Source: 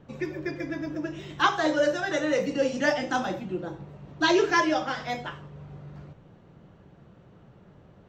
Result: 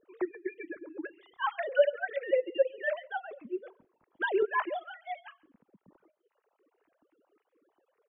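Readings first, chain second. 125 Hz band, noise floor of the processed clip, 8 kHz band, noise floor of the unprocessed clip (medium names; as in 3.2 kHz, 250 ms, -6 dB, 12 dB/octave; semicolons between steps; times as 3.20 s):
under -30 dB, -82 dBFS, under -35 dB, -55 dBFS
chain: formants replaced by sine waves; delay 137 ms -14 dB; reverb removal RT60 1.4 s; trim -5 dB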